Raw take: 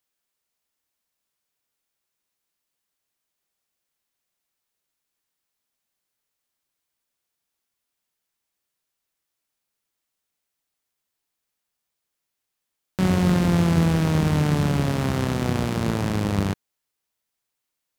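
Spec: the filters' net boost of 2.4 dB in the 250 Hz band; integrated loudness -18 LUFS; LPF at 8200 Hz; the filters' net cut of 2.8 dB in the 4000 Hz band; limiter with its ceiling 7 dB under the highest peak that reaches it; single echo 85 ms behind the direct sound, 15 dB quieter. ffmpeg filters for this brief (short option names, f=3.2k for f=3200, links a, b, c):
-af "lowpass=8.2k,equalizer=f=250:t=o:g=4,equalizer=f=4k:t=o:g=-3.5,alimiter=limit=-13.5dB:level=0:latency=1,aecho=1:1:85:0.178,volume=5dB"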